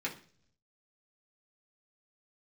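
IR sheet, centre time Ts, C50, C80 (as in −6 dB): 14 ms, 12.0 dB, 17.0 dB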